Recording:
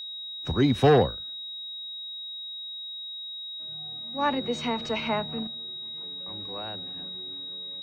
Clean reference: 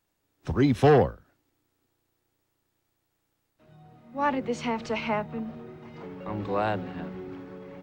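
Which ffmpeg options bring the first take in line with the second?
-af "bandreject=f=3800:w=30,asetnsamples=n=441:p=0,asendcmd='5.47 volume volume 12dB',volume=1"

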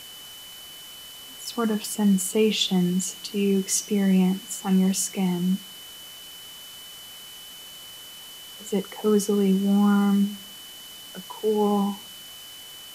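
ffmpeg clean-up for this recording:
-af "bandreject=f=3000:w=30,afwtdn=0.0063"

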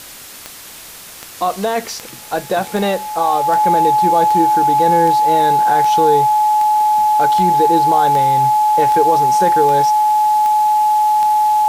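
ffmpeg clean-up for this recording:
-af "adeclick=t=4,bandreject=f=850:w=30,afwtdn=0.02"

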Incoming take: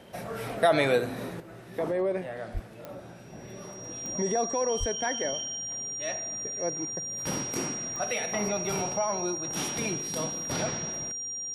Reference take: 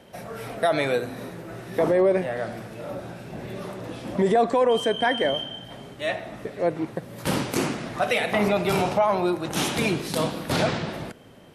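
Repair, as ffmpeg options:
-filter_complex "[0:a]adeclick=t=4,bandreject=f=5700:w=30,asplit=3[s0][s1][s2];[s0]afade=t=out:st=2.53:d=0.02[s3];[s1]highpass=f=140:w=0.5412,highpass=f=140:w=1.3066,afade=t=in:st=2.53:d=0.02,afade=t=out:st=2.65:d=0.02[s4];[s2]afade=t=in:st=2.65:d=0.02[s5];[s3][s4][s5]amix=inputs=3:normalize=0,asplit=3[s6][s7][s8];[s6]afade=t=out:st=4.79:d=0.02[s9];[s7]highpass=f=140:w=0.5412,highpass=f=140:w=1.3066,afade=t=in:st=4.79:d=0.02,afade=t=out:st=4.91:d=0.02[s10];[s8]afade=t=in:st=4.91:d=0.02[s11];[s9][s10][s11]amix=inputs=3:normalize=0,asetnsamples=n=441:p=0,asendcmd='1.4 volume volume 8.5dB',volume=1"

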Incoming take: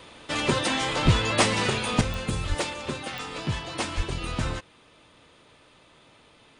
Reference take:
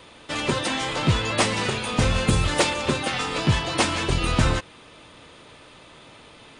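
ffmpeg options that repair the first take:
-filter_complex "[0:a]adeclick=t=4,asplit=3[s0][s1][s2];[s0]afade=t=out:st=1.04:d=0.02[s3];[s1]highpass=f=140:w=0.5412,highpass=f=140:w=1.3066,afade=t=in:st=1.04:d=0.02,afade=t=out:st=1.16:d=0.02[s4];[s2]afade=t=in:st=1.16:d=0.02[s5];[s3][s4][s5]amix=inputs=3:normalize=0,asplit=3[s6][s7][s8];[s6]afade=t=out:st=2.48:d=0.02[s9];[s7]highpass=f=140:w=0.5412,highpass=f=140:w=1.3066,afade=t=in:st=2.48:d=0.02,afade=t=out:st=2.6:d=0.02[s10];[s8]afade=t=in:st=2.6:d=0.02[s11];[s9][s10][s11]amix=inputs=3:normalize=0,asplit=3[s12][s13][s14];[s12]afade=t=out:st=3.96:d=0.02[s15];[s13]highpass=f=140:w=0.5412,highpass=f=140:w=1.3066,afade=t=in:st=3.96:d=0.02,afade=t=out:st=4.08:d=0.02[s16];[s14]afade=t=in:st=4.08:d=0.02[s17];[s15][s16][s17]amix=inputs=3:normalize=0,asetnsamples=n=441:p=0,asendcmd='2.01 volume volume 8.5dB',volume=1"

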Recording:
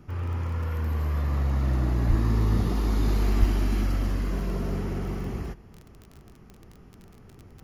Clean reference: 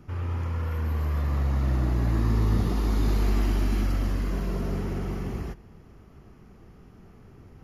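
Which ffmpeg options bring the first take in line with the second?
-filter_complex "[0:a]adeclick=t=4,asplit=3[s0][s1][s2];[s0]afade=t=out:st=2.08:d=0.02[s3];[s1]highpass=f=140:w=0.5412,highpass=f=140:w=1.3066,afade=t=in:st=2.08:d=0.02,afade=t=out:st=2.2:d=0.02[s4];[s2]afade=t=in:st=2.2:d=0.02[s5];[s3][s4][s5]amix=inputs=3:normalize=0,asplit=3[s6][s7][s8];[s6]afade=t=out:st=3.39:d=0.02[s9];[s7]highpass=f=140:w=0.5412,highpass=f=140:w=1.3066,afade=t=in:st=3.39:d=0.02,afade=t=out:st=3.51:d=0.02[s10];[s8]afade=t=in:st=3.51:d=0.02[s11];[s9][s10][s11]amix=inputs=3:normalize=0"

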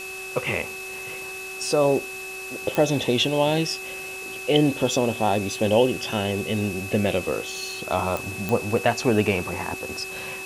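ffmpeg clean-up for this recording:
-af "adeclick=t=4,bandreject=f=379.4:t=h:w=4,bandreject=f=758.8:t=h:w=4,bandreject=f=1138.2:t=h:w=4,bandreject=f=1517.6:t=h:w=4,bandreject=f=2600:w=30,afwtdn=0.01"

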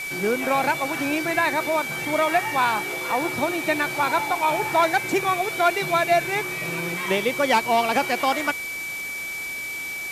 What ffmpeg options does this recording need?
-af "bandreject=f=2300:w=30,afwtdn=0.013"

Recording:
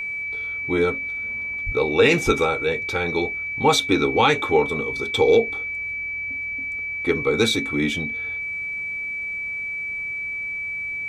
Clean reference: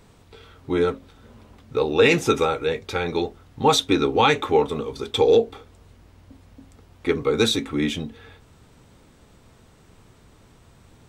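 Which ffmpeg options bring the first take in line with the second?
-filter_complex "[0:a]bandreject=f=2300:w=30,asplit=3[s0][s1][s2];[s0]afade=t=out:st=1.65:d=0.02[s3];[s1]highpass=f=140:w=0.5412,highpass=f=140:w=1.3066,afade=t=in:st=1.65:d=0.02,afade=t=out:st=1.77:d=0.02[s4];[s2]afade=t=in:st=1.77:d=0.02[s5];[s3][s4][s5]amix=inputs=3:normalize=0,asplit=3[s6][s7][s8];[s6]afade=t=out:st=2.25:d=0.02[s9];[s7]highpass=f=140:w=0.5412,highpass=f=140:w=1.3066,afade=t=in:st=2.25:d=0.02,afade=t=out:st=2.37:d=0.02[s10];[s8]afade=t=in:st=2.37:d=0.02[s11];[s9][s10][s11]amix=inputs=3:normalize=0"

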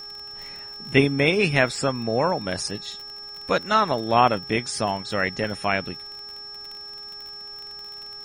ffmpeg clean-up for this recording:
-af "adeclick=t=4,bandreject=f=409.5:t=h:w=4,bandreject=f=819:t=h:w=4,bandreject=f=1228.5:t=h:w=4,bandreject=f=1638:t=h:w=4,bandreject=f=5400:w=30,agate=range=0.0891:threshold=0.0282"

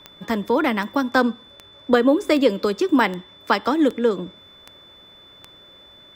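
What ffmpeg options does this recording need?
-af "adeclick=t=4,bandreject=f=3500:w=30"

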